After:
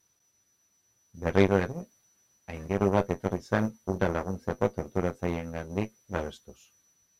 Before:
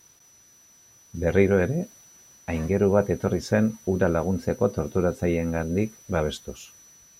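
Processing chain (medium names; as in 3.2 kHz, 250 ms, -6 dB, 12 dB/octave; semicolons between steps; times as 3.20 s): Chebyshev shaper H 4 -15 dB, 6 -22 dB, 7 -20 dB, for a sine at -5 dBFS; flange 0.48 Hz, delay 9.6 ms, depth 1.4 ms, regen -49%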